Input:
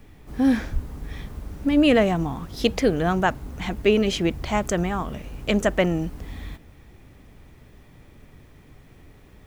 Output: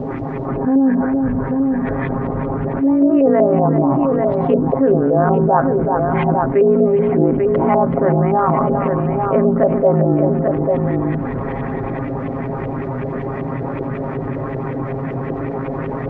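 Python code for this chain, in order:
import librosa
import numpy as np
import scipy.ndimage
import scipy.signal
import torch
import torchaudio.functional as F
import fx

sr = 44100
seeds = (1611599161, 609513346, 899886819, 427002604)

p1 = scipy.signal.sosfilt(scipy.signal.butter(2, 160.0, 'highpass', fs=sr, output='sos'), x)
p2 = fx.hum_notches(p1, sr, base_hz=50, count=7)
p3 = fx.env_lowpass_down(p2, sr, base_hz=1400.0, full_db=-20.5)
p4 = fx.curve_eq(p3, sr, hz=(1100.0, 1900.0, 3600.0), db=(0, -5, -11))
p5 = fx.rider(p4, sr, range_db=4, speed_s=2.0)
p6 = p4 + F.gain(torch.from_numpy(p5), 2.5).numpy()
p7 = fx.filter_lfo_lowpass(p6, sr, shape='saw_up', hz=9.0, low_hz=490.0, high_hz=2900.0, q=2.0)
p8 = fx.stretch_grains(p7, sr, factor=1.7, grain_ms=36.0)
p9 = p8 * (1.0 - 0.42 / 2.0 + 0.42 / 2.0 * np.cos(2.0 * np.pi * 7.9 * (np.arange(len(p8)) / sr)))
p10 = fx.quant_dither(p9, sr, seeds[0], bits=12, dither='none')
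p11 = fx.spacing_loss(p10, sr, db_at_10k=35)
p12 = p11 + fx.echo_multitap(p11, sr, ms=(380, 842), db=(-14.0, -12.0), dry=0)
p13 = fx.env_flatten(p12, sr, amount_pct=70)
y = F.gain(torch.from_numpy(p13), -3.0).numpy()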